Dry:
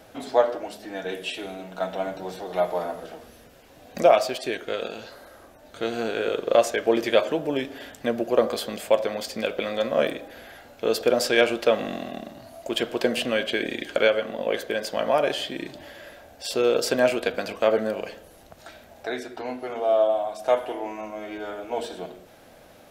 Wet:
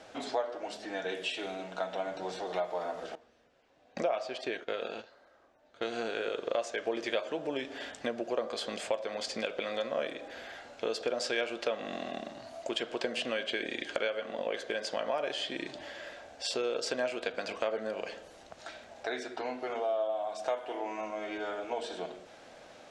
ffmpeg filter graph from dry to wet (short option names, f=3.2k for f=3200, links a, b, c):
-filter_complex "[0:a]asettb=1/sr,asplit=3[a][b][c];[a]atrim=end=3.154[d];[b]atrim=start=3.15:end=5.82,asetpts=PTS-STARTPTS,afade=t=in:d=0.004:c=qsin,afade=t=out:st=2.666:d=0.004:c=qsin,aemphasis=mode=reproduction:type=50kf,agate=range=-13dB:threshold=-40dB:ratio=16:release=100:detection=peak[e];[c]atrim=start=5.816[f];[d][e]acrossfade=d=0.004:c1=hsin:c2=qsin[g];[g][f]acrossfade=d=0.004:c1=qsin:c2=hsin,lowpass=f=7.8k:w=0.5412,lowpass=f=7.8k:w=1.3066,lowshelf=f=230:g=-11.5,acompressor=threshold=-32dB:ratio=3"